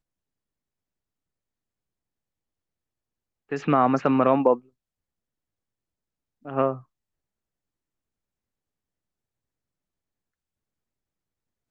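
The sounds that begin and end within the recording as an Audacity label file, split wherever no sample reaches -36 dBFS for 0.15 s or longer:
3.520000	4.580000	sound
6.460000	6.780000	sound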